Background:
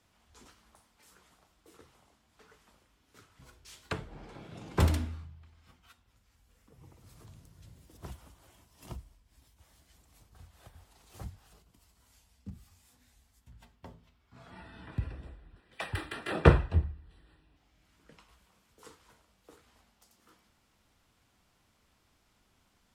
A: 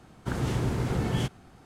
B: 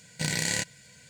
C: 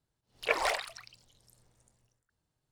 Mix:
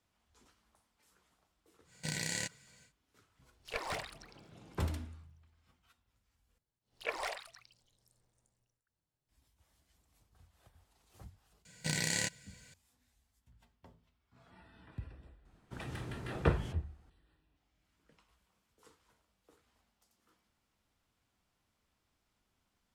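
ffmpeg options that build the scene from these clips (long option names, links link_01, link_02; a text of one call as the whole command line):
ffmpeg -i bed.wav -i cue0.wav -i cue1.wav -i cue2.wav -filter_complex "[2:a]asplit=2[link_01][link_02];[3:a]asplit=2[link_03][link_04];[0:a]volume=-10dB[link_05];[link_03]aeval=exprs='clip(val(0),-1,0.0355)':channel_layout=same[link_06];[link_05]asplit=2[link_07][link_08];[link_07]atrim=end=6.584[link_09];[link_04]atrim=end=2.71,asetpts=PTS-STARTPTS,volume=-9dB[link_10];[link_08]atrim=start=9.286[link_11];[link_01]atrim=end=1.09,asetpts=PTS-STARTPTS,volume=-9dB,afade=type=in:duration=0.1,afade=type=out:start_time=0.99:duration=0.1,adelay=1840[link_12];[link_06]atrim=end=2.71,asetpts=PTS-STARTPTS,volume=-8.5dB,afade=type=in:duration=0.004:curve=hsin,afade=type=out:start_time=2.706:duration=0.004:curve=hsin,adelay=143325S[link_13];[link_02]atrim=end=1.09,asetpts=PTS-STARTPTS,volume=-5.5dB,afade=type=in:duration=0.004:curve=hsin,afade=type=out:start_time=1.086:duration=0.004:curve=hsin,adelay=11650[link_14];[1:a]atrim=end=1.65,asetpts=PTS-STARTPTS,volume=-16dB,afade=type=in:duration=0.004:curve=hsin,afade=type=out:start_time=1.646:duration=0.004:curve=hsin,adelay=15450[link_15];[link_09][link_10]acrossfade=duration=0.004:curve1=hsin:curve2=hsin[link_16];[link_16][link_11]acrossfade=duration=0.004:curve1=hsin:curve2=hsin[link_17];[link_17][link_12][link_13][link_14][link_15]amix=inputs=5:normalize=0" out.wav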